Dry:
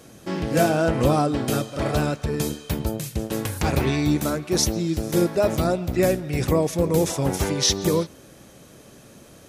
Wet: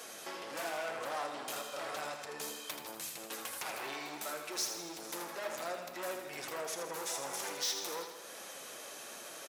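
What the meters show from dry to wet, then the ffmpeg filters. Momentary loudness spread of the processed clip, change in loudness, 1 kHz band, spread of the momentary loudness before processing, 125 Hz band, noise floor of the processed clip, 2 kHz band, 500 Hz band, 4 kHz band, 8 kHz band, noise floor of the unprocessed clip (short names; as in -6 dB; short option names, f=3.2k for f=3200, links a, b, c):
9 LU, -17.0 dB, -12.0 dB, 8 LU, -37.5 dB, -48 dBFS, -9.5 dB, -19.0 dB, -11.0 dB, -10.5 dB, -48 dBFS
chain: -filter_complex "[0:a]asoftclip=type=tanh:threshold=-23.5dB,acompressor=threshold=-43dB:ratio=3,flanger=delay=4.1:depth=5:regen=-43:speed=1.2:shape=triangular,highpass=710,asplit=2[a][b];[b]aecho=0:1:81|162|243|324|405|486|567:0.422|0.245|0.142|0.0823|0.0477|0.0277|0.0161[c];[a][c]amix=inputs=2:normalize=0,volume=9dB"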